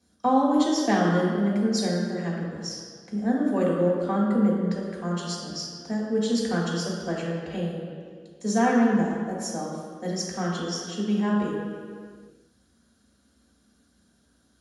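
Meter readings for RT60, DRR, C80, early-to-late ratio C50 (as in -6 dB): no single decay rate, -5.5 dB, 2.0 dB, 0.5 dB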